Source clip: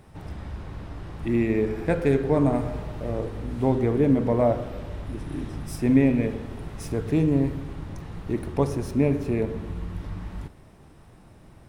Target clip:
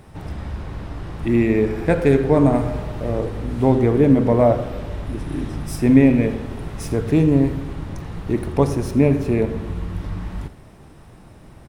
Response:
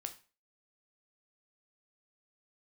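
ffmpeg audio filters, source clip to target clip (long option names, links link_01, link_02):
-af "aecho=1:1:84:0.141,volume=6dB"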